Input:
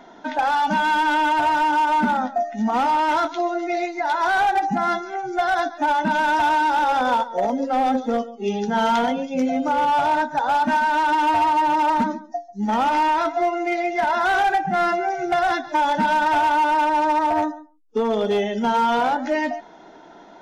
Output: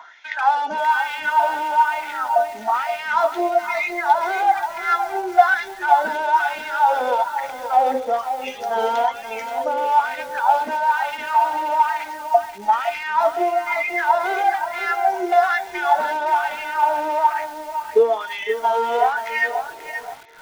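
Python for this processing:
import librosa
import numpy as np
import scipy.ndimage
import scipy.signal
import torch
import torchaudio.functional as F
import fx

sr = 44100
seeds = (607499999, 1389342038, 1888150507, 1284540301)

p1 = fx.rider(x, sr, range_db=10, speed_s=0.5)
p2 = fx.filter_lfo_highpass(p1, sr, shape='sine', hz=1.1, low_hz=420.0, high_hz=2300.0, q=5.3)
p3 = p2 + fx.echo_bbd(p2, sr, ms=507, stages=4096, feedback_pct=42, wet_db=-17.0, dry=0)
p4 = fx.echo_crushed(p3, sr, ms=530, feedback_pct=35, bits=5, wet_db=-9)
y = F.gain(torch.from_numpy(p4), -5.5).numpy()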